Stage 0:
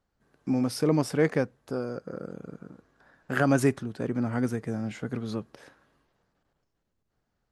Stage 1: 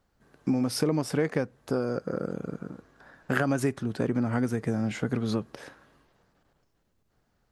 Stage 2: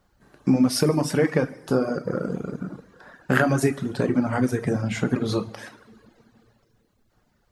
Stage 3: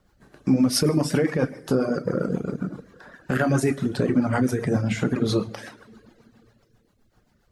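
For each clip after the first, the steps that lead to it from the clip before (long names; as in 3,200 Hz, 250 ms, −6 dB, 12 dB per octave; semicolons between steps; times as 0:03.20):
downward compressor 6 to 1, threshold −29 dBFS, peak gain reduction 12 dB; level +6.5 dB
coupled-rooms reverb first 0.91 s, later 3.1 s, DRR 3 dB; reverb reduction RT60 0.81 s; level +5.5 dB
brickwall limiter −13.5 dBFS, peak gain reduction 9.5 dB; rotating-speaker cabinet horn 7.5 Hz; level +4 dB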